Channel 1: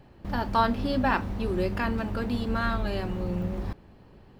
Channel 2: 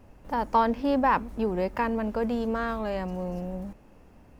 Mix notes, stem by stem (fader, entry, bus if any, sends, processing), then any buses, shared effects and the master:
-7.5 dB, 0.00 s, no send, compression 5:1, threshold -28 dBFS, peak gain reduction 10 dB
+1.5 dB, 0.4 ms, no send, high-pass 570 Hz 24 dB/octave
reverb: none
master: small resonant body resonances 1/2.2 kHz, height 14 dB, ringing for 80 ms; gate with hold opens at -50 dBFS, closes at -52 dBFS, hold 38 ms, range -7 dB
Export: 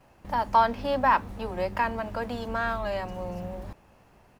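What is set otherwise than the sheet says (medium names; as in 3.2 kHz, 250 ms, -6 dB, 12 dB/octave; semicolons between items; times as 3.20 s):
stem 1: missing compression 5:1, threshold -28 dBFS, peak gain reduction 10 dB; master: missing small resonant body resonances 1/2.2 kHz, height 14 dB, ringing for 80 ms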